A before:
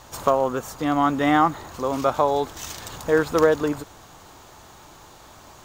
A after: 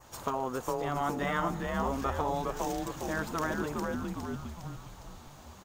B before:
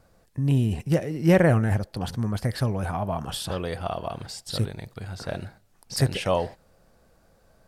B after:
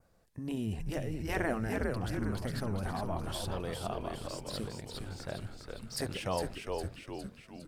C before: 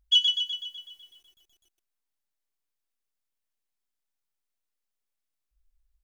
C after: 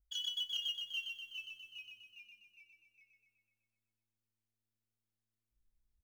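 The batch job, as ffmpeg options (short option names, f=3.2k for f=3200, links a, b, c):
-filter_complex "[0:a]asplit=8[a][b][c][d][e][f][g][h];[b]adelay=408,afreqshift=-110,volume=-4.5dB[i];[c]adelay=816,afreqshift=-220,volume=-10.3dB[j];[d]adelay=1224,afreqshift=-330,volume=-16.2dB[k];[e]adelay=1632,afreqshift=-440,volume=-22dB[l];[f]adelay=2040,afreqshift=-550,volume=-27.9dB[m];[g]adelay=2448,afreqshift=-660,volume=-33.7dB[n];[h]adelay=2856,afreqshift=-770,volume=-39.6dB[o];[a][i][j][k][l][m][n][o]amix=inputs=8:normalize=0,adynamicequalizer=threshold=0.00562:dfrequency=3800:dqfactor=1.9:tfrequency=3800:tqfactor=1.9:attack=5:release=100:ratio=0.375:range=2:mode=cutabove:tftype=bell,afftfilt=real='re*lt(hypot(re,im),0.708)':imag='im*lt(hypot(re,im),0.708)':win_size=1024:overlap=0.75,acrossover=split=2500[p][q];[q]acrusher=bits=5:mode=log:mix=0:aa=0.000001[r];[p][r]amix=inputs=2:normalize=0,volume=-8.5dB"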